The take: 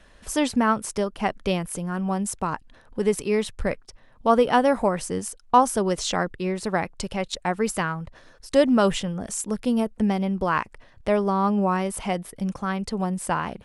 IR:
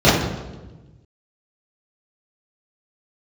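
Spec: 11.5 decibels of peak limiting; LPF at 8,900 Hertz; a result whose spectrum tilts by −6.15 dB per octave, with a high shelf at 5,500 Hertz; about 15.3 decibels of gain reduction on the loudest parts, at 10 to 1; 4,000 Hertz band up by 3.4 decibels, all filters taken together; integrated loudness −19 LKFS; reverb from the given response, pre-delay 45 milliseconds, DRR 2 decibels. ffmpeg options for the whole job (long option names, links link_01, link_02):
-filter_complex "[0:a]lowpass=8900,equalizer=frequency=4000:width_type=o:gain=6.5,highshelf=frequency=5500:gain=-5,acompressor=threshold=-28dB:ratio=10,alimiter=level_in=2dB:limit=-24dB:level=0:latency=1,volume=-2dB,asplit=2[link_01][link_02];[1:a]atrim=start_sample=2205,adelay=45[link_03];[link_02][link_03]afir=irnorm=-1:irlink=0,volume=-29dB[link_04];[link_01][link_04]amix=inputs=2:normalize=0,volume=12dB"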